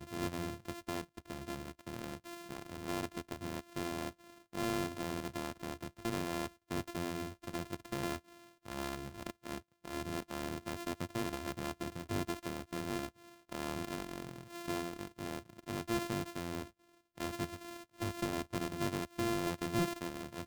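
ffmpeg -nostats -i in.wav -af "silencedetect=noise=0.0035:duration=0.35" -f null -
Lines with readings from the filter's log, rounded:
silence_start: 16.69
silence_end: 17.17 | silence_duration: 0.48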